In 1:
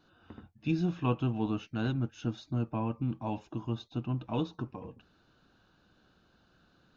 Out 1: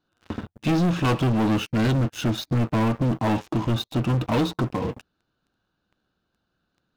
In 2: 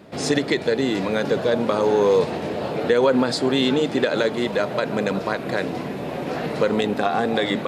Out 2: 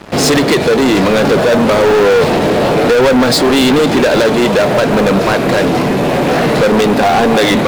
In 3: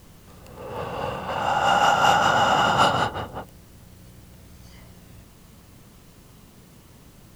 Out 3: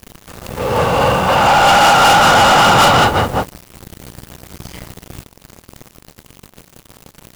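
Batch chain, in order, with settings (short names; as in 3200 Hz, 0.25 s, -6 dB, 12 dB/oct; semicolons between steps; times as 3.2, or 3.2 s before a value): sample leveller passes 5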